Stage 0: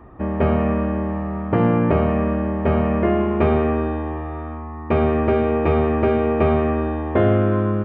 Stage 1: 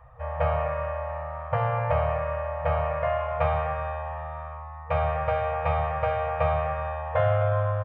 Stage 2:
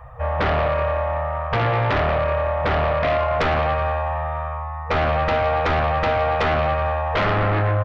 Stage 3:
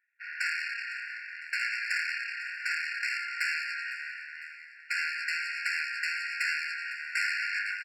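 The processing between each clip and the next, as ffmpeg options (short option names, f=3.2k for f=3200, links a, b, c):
-af "afftfilt=real='re*(1-between(b*sr/4096,160,470))':imag='im*(1-between(b*sr/4096,160,470))':win_size=4096:overlap=0.75,aecho=1:1:252:0.224,adynamicequalizer=threshold=0.0178:dfrequency=880:dqfactor=0.73:tfrequency=880:tqfactor=0.73:attack=5:release=100:ratio=0.375:range=2:mode=boostabove:tftype=bell,volume=-5.5dB"
-af "aeval=exprs='0.299*sin(PI/2*3.98*val(0)/0.299)':c=same,volume=-5.5dB"
-af "aeval=exprs='0.168*(cos(1*acos(clip(val(0)/0.168,-1,1)))-cos(1*PI/2))+0.0531*(cos(3*acos(clip(val(0)/0.168,-1,1)))-cos(3*PI/2))+0.00473*(cos(6*acos(clip(val(0)/0.168,-1,1)))-cos(6*PI/2))+0.00376*(cos(7*acos(clip(val(0)/0.168,-1,1)))-cos(7*PI/2))':c=same,aecho=1:1:505|1010|1515|2020:0.158|0.0713|0.0321|0.0144,afftfilt=real='re*eq(mod(floor(b*sr/1024/1400),2),1)':imag='im*eq(mod(floor(b*sr/1024/1400),2),1)':win_size=1024:overlap=0.75,volume=-2dB"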